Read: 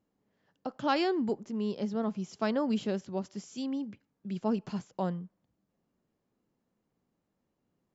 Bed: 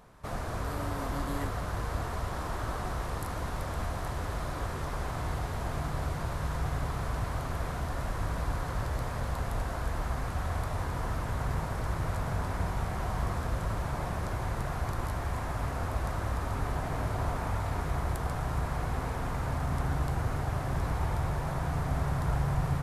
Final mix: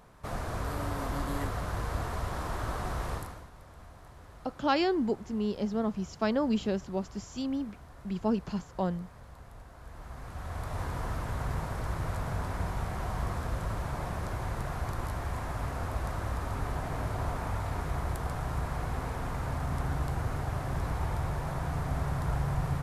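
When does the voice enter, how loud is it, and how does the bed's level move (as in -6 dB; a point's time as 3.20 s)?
3.80 s, +1.5 dB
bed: 3.14 s 0 dB
3.50 s -17 dB
9.73 s -17 dB
10.81 s -1.5 dB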